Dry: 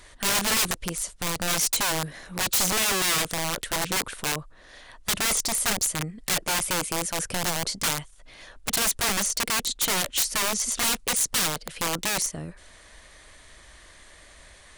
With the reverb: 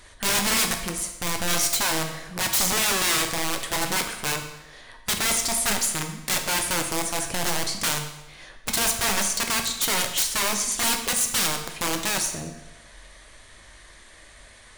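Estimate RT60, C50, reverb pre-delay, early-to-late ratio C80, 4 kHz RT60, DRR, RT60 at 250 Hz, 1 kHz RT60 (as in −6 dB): 0.95 s, 7.5 dB, 9 ms, 9.0 dB, 0.90 s, 3.5 dB, 0.95 s, 0.95 s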